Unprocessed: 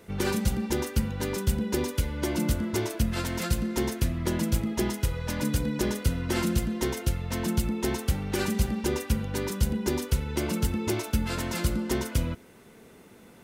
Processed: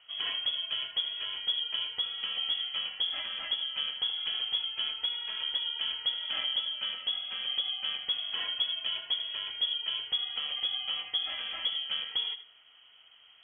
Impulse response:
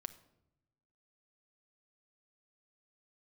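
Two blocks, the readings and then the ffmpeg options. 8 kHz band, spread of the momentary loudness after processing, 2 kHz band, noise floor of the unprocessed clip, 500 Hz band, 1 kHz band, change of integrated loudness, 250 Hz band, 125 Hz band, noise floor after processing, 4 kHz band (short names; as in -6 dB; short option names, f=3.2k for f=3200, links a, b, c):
under -40 dB, 3 LU, -4.5 dB, -52 dBFS, -24.5 dB, -10.5 dB, -2.0 dB, under -35 dB, under -40 dB, -58 dBFS, +12.5 dB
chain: -filter_complex "[0:a]lowpass=f=2.9k:t=q:w=0.5098,lowpass=f=2.9k:t=q:w=0.6013,lowpass=f=2.9k:t=q:w=0.9,lowpass=f=2.9k:t=q:w=2.563,afreqshift=-3400,asplit=2[a][b];[1:a]atrim=start_sample=2205,adelay=79[c];[b][c]afir=irnorm=-1:irlink=0,volume=-8dB[d];[a][d]amix=inputs=2:normalize=0,volume=-6.5dB"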